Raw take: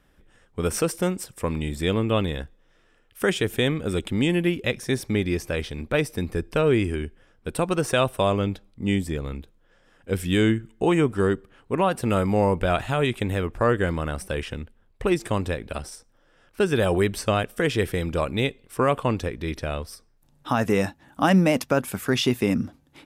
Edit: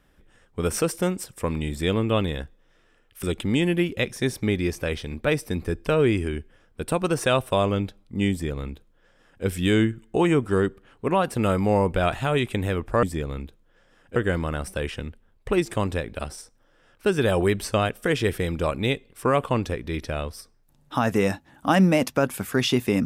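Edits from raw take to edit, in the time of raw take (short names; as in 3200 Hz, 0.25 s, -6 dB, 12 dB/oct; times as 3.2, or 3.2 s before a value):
3.23–3.9 cut
8.98–10.11 copy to 13.7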